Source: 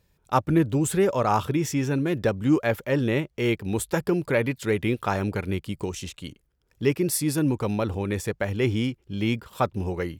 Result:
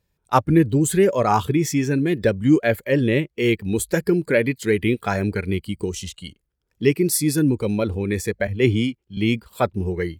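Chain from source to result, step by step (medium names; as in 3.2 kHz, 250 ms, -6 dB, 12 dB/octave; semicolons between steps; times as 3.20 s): spectral noise reduction 11 dB; 8.47–9.17 s: three bands expanded up and down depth 70%; trim +5 dB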